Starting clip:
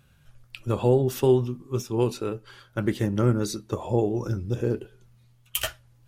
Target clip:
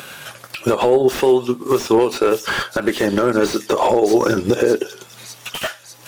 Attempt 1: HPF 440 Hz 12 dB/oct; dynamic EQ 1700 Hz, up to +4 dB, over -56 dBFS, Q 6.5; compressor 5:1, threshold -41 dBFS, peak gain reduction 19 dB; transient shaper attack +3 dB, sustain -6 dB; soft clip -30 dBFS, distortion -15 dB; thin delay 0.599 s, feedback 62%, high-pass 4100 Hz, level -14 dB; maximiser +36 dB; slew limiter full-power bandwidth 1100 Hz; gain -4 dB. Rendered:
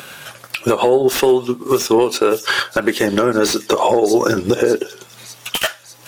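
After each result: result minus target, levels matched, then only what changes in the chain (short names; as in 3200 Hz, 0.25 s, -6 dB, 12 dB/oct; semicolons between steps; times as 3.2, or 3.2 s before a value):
soft clip: distortion +9 dB; slew limiter: distortion -5 dB
change: soft clip -21.5 dBFS, distortion -24 dB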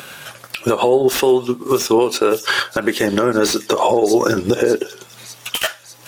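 slew limiter: distortion -5 dB
change: slew limiter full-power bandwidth 359 Hz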